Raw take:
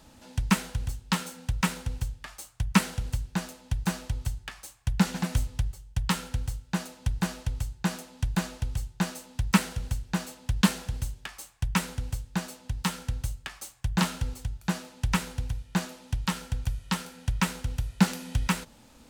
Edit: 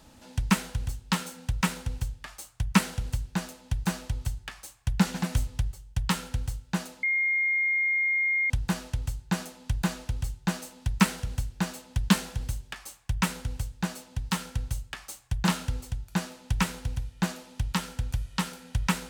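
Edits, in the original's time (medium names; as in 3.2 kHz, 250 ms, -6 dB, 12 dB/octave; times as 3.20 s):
7.03 s: add tone 2.13 kHz -22.5 dBFS 1.47 s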